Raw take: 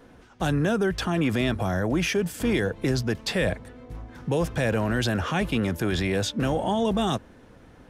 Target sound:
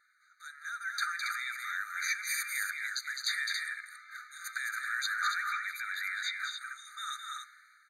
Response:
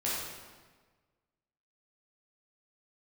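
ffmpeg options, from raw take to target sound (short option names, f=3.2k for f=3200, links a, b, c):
-filter_complex "[0:a]asettb=1/sr,asplit=3[a][b][c];[a]atrim=end=5.234[d];[b]atrim=start=5.23:end=6.76,asetpts=PTS-STARTPTS,afade=t=in:d=0.004:c=qsin,afade=t=out:st=1.526:d=0.004:c=qsin,acrossover=split=3000[e][f];[f]acompressor=threshold=-48dB:ratio=4:attack=1:release=60[g];[e][g]amix=inputs=2:normalize=0[h];[c]atrim=start=6.756[i];[d][h]acrossfade=d=0.004:c1=hsin:c2=qsin[j];[j][i]acrossfade=d=0.004:c1=qsin:c2=hsin,alimiter=limit=-24dB:level=0:latency=1:release=44,dynaudnorm=f=190:g=7:m=14dB,aecho=1:1:209.9|277:0.562|0.501,asplit=2[k][l];[1:a]atrim=start_sample=2205,asetrate=79380,aresample=44100[m];[l][m]afir=irnorm=-1:irlink=0,volume=-18.5dB[n];[k][n]amix=inputs=2:normalize=0,afftfilt=real='re*eq(mod(floor(b*sr/1024/1200),2),1)':imag='im*eq(mod(floor(b*sr/1024/1200),2),1)':win_size=1024:overlap=0.75,volume=-8.5dB"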